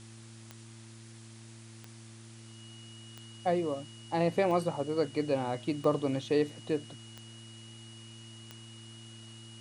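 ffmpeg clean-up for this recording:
-af "adeclick=t=4,bandreject=f=112.8:t=h:w=4,bandreject=f=225.6:t=h:w=4,bandreject=f=338.4:t=h:w=4,bandreject=f=2900:w=30,afwtdn=0.002"

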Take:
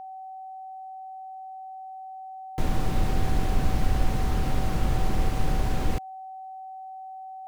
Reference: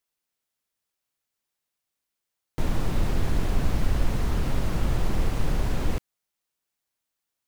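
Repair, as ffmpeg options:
-af "bandreject=f=760:w=30"

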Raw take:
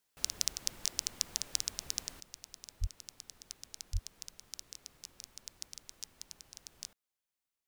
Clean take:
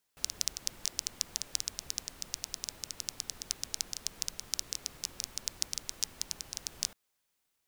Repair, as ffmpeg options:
-filter_complex "[0:a]asplit=3[s0][s1][s2];[s0]afade=t=out:st=2.8:d=0.02[s3];[s1]highpass=f=140:w=0.5412,highpass=f=140:w=1.3066,afade=t=in:st=2.8:d=0.02,afade=t=out:st=2.92:d=0.02[s4];[s2]afade=t=in:st=2.92:d=0.02[s5];[s3][s4][s5]amix=inputs=3:normalize=0,asplit=3[s6][s7][s8];[s6]afade=t=out:st=3.92:d=0.02[s9];[s7]highpass=f=140:w=0.5412,highpass=f=140:w=1.3066,afade=t=in:st=3.92:d=0.02,afade=t=out:st=4.04:d=0.02[s10];[s8]afade=t=in:st=4.04:d=0.02[s11];[s9][s10][s11]amix=inputs=3:normalize=0,asetnsamples=n=441:p=0,asendcmd='2.2 volume volume 11.5dB',volume=1"

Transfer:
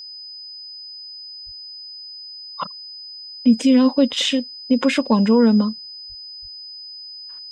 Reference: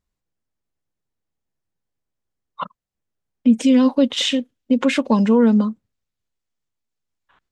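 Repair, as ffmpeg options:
-filter_complex "[0:a]bandreject=f=5000:w=30,asplit=3[s0][s1][s2];[s0]afade=t=out:st=1.45:d=0.02[s3];[s1]highpass=f=140:w=0.5412,highpass=f=140:w=1.3066,afade=t=in:st=1.45:d=0.02,afade=t=out:st=1.57:d=0.02[s4];[s2]afade=t=in:st=1.57:d=0.02[s5];[s3][s4][s5]amix=inputs=3:normalize=0,asplit=3[s6][s7][s8];[s6]afade=t=out:st=6.08:d=0.02[s9];[s7]highpass=f=140:w=0.5412,highpass=f=140:w=1.3066,afade=t=in:st=6.08:d=0.02,afade=t=out:st=6.2:d=0.02[s10];[s8]afade=t=in:st=6.2:d=0.02[s11];[s9][s10][s11]amix=inputs=3:normalize=0,asplit=3[s12][s13][s14];[s12]afade=t=out:st=6.41:d=0.02[s15];[s13]highpass=f=140:w=0.5412,highpass=f=140:w=1.3066,afade=t=in:st=6.41:d=0.02,afade=t=out:st=6.53:d=0.02[s16];[s14]afade=t=in:st=6.53:d=0.02[s17];[s15][s16][s17]amix=inputs=3:normalize=0"

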